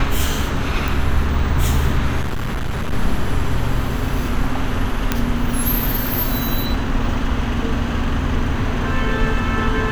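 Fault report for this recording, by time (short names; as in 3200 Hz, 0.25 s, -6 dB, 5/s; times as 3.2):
0.88 pop
2.21–2.93 clipped -18.5 dBFS
5.12 pop -2 dBFS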